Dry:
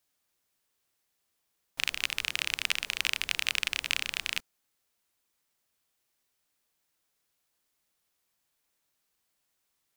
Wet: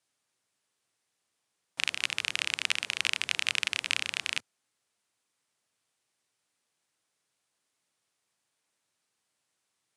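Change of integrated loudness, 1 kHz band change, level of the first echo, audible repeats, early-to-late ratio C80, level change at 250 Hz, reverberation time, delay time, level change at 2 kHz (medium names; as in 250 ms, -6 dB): +0.5 dB, +1.0 dB, no echo, no echo, no reverb, 0.0 dB, no reverb, no echo, +0.5 dB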